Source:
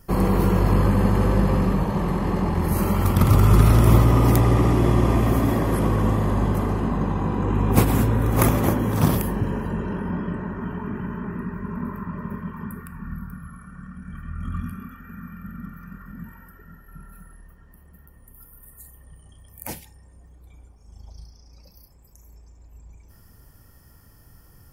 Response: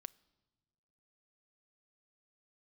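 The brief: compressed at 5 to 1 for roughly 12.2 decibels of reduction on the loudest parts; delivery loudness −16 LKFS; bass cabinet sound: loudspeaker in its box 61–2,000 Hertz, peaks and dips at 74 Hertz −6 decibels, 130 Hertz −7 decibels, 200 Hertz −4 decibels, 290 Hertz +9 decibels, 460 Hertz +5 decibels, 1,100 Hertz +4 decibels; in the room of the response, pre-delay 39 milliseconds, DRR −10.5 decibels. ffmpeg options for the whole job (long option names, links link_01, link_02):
-filter_complex "[0:a]acompressor=threshold=-24dB:ratio=5,asplit=2[link_01][link_02];[1:a]atrim=start_sample=2205,adelay=39[link_03];[link_02][link_03]afir=irnorm=-1:irlink=0,volume=16.5dB[link_04];[link_01][link_04]amix=inputs=2:normalize=0,highpass=frequency=61:width=0.5412,highpass=frequency=61:width=1.3066,equalizer=frequency=74:width_type=q:width=4:gain=-6,equalizer=frequency=130:width_type=q:width=4:gain=-7,equalizer=frequency=200:width_type=q:width=4:gain=-4,equalizer=frequency=290:width_type=q:width=4:gain=9,equalizer=frequency=460:width_type=q:width=4:gain=5,equalizer=frequency=1100:width_type=q:width=4:gain=4,lowpass=frequency=2000:width=0.5412,lowpass=frequency=2000:width=1.3066,volume=2.5dB"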